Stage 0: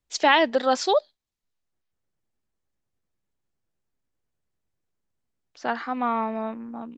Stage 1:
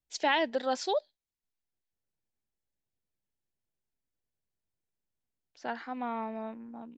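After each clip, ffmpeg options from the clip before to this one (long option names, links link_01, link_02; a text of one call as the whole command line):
ffmpeg -i in.wav -af "equalizer=frequency=1200:width_type=o:width=0.2:gain=-9.5,volume=-8.5dB" out.wav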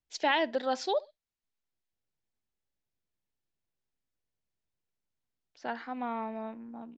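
ffmpeg -i in.wav -filter_complex "[0:a]lowpass=6400,asplit=2[link_01][link_02];[link_02]adelay=60,lowpass=frequency=2200:poles=1,volume=-22dB,asplit=2[link_03][link_04];[link_04]adelay=60,lowpass=frequency=2200:poles=1,volume=0.32[link_05];[link_01][link_03][link_05]amix=inputs=3:normalize=0" out.wav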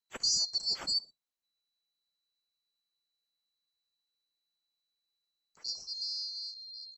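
ffmpeg -i in.wav -af "afftfilt=real='real(if(lt(b,736),b+184*(1-2*mod(floor(b/184),2)),b),0)':imag='imag(if(lt(b,736),b+184*(1-2*mod(floor(b/184),2)),b),0)':win_size=2048:overlap=0.75,volume=-2.5dB" out.wav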